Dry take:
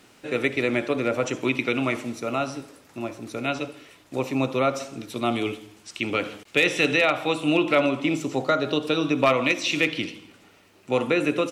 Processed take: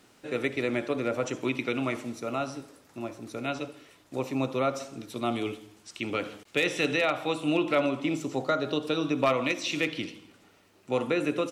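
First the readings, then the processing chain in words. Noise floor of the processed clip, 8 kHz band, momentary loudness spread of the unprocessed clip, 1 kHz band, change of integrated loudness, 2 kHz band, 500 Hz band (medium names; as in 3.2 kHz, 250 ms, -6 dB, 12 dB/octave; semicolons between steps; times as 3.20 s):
-60 dBFS, -4.5 dB, 14 LU, -5.0 dB, -5.5 dB, -7.0 dB, -4.5 dB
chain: peaking EQ 2.5 kHz -3 dB 0.77 oct; trim -4.5 dB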